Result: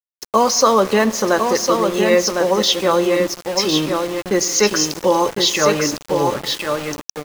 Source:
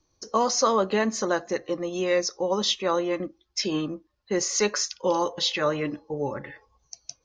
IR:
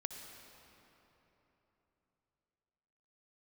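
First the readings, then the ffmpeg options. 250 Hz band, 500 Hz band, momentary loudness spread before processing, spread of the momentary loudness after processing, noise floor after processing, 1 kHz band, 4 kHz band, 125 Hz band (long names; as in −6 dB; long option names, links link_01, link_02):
+9.5 dB, +9.5 dB, 10 LU, 7 LU, below −85 dBFS, +9.5 dB, +9.5 dB, +9.5 dB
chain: -filter_complex "[0:a]aecho=1:1:1055:0.562,asplit=2[link_01][link_02];[1:a]atrim=start_sample=2205[link_03];[link_02][link_03]afir=irnorm=-1:irlink=0,volume=-7.5dB[link_04];[link_01][link_04]amix=inputs=2:normalize=0,aeval=exprs='val(0)*gte(abs(val(0)),0.0282)':channel_layout=same,volume=6dB"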